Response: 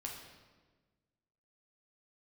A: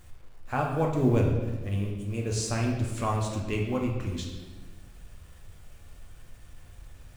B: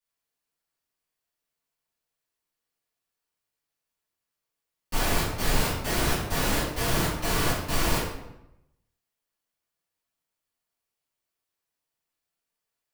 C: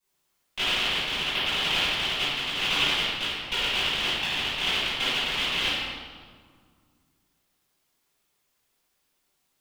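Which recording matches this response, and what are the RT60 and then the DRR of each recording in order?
A; 1.4, 0.90, 1.8 s; -1.0, -13.0, -17.5 dB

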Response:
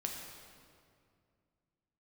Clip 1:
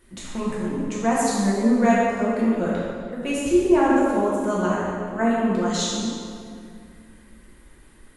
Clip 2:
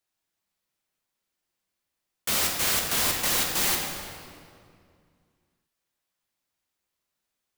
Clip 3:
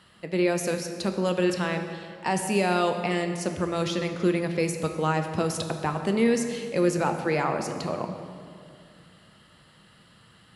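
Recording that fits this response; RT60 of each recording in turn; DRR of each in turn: 2; 2.3, 2.3, 2.3 s; -7.0, 0.5, 6.0 dB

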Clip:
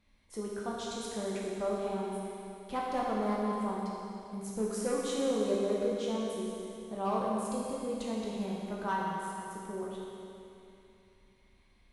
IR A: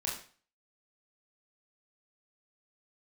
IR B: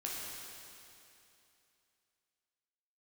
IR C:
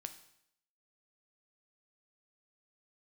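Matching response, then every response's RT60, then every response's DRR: B; 0.40, 2.8, 0.75 s; -4.0, -5.0, 7.5 dB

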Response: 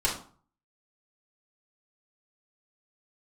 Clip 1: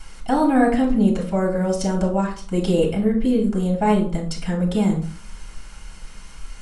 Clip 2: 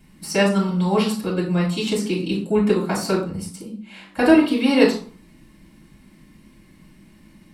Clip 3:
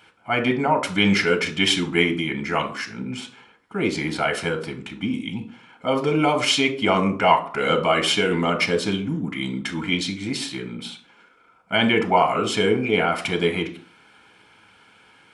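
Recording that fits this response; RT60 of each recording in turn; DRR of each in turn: 2; 0.45, 0.45, 0.45 s; -1.5, -6.5, 5.0 dB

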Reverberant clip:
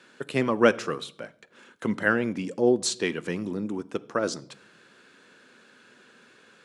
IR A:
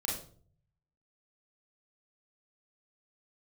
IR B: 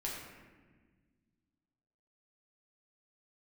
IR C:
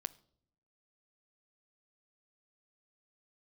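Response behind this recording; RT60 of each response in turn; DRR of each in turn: C; 0.50 s, 1.4 s, not exponential; -3.0, -4.5, 15.5 dB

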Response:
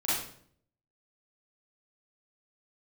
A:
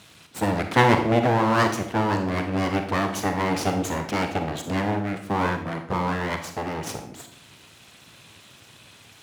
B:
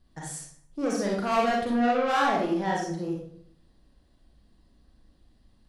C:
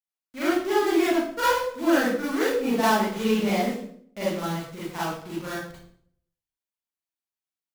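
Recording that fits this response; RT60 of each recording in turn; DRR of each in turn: C; 0.60, 0.60, 0.60 s; 5.5, -3.5, -11.0 dB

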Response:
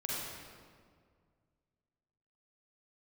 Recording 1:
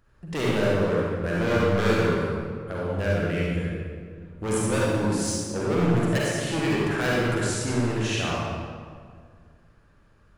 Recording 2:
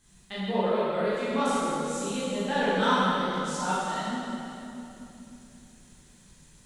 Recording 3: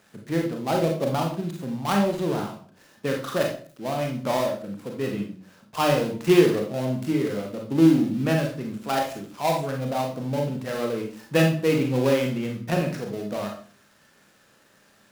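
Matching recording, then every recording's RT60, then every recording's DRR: 1; 2.0, 3.0, 0.45 s; -6.0, -11.0, 1.5 dB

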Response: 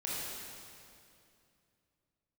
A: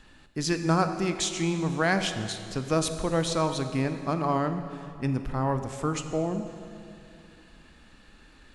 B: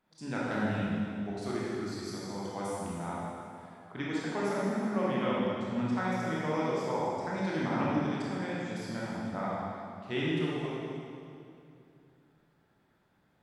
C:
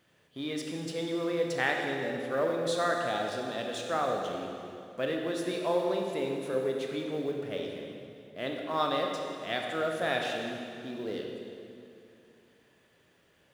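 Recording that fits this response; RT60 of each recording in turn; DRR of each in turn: B; 2.6, 2.6, 2.6 s; 8.0, -7.0, 1.0 dB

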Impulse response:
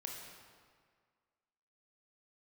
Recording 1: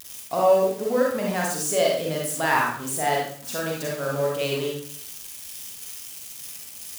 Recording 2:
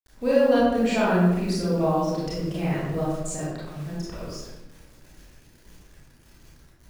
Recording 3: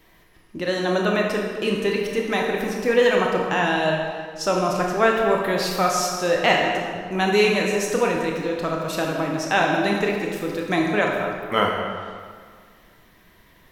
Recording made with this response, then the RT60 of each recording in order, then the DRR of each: 3; 0.55, 1.0, 1.8 s; -3.0, -8.5, -0.5 dB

